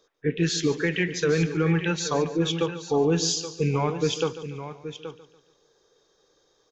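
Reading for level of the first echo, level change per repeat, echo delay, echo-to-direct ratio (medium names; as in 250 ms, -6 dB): -14.5 dB, no regular repeats, 144 ms, -9.5 dB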